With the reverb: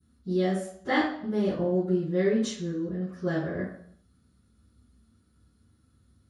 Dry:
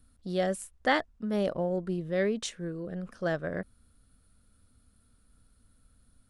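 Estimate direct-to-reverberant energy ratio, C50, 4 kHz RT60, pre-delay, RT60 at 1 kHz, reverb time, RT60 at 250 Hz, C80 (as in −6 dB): −22.0 dB, 3.0 dB, 0.60 s, 3 ms, 0.55 s, 0.60 s, 0.60 s, 7.0 dB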